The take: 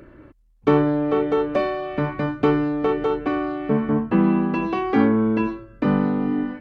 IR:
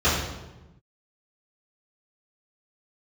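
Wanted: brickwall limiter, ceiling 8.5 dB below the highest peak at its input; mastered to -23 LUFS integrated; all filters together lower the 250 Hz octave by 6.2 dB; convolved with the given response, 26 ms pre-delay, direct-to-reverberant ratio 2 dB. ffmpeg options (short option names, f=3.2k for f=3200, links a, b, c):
-filter_complex "[0:a]equalizer=f=250:t=o:g=-8,alimiter=limit=-16dB:level=0:latency=1,asplit=2[a][b];[1:a]atrim=start_sample=2205,adelay=26[c];[b][c]afir=irnorm=-1:irlink=0,volume=-20.5dB[d];[a][d]amix=inputs=2:normalize=0,volume=-0.5dB"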